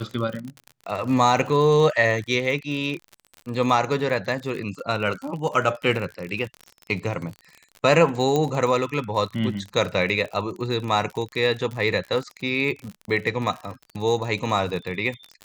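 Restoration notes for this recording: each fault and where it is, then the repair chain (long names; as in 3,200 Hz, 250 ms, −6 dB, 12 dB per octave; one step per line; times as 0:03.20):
surface crackle 52 per second −30 dBFS
0:08.36: click −11 dBFS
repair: click removal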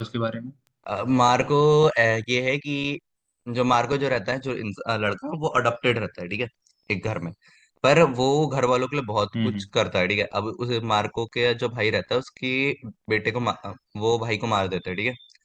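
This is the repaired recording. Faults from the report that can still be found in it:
none of them is left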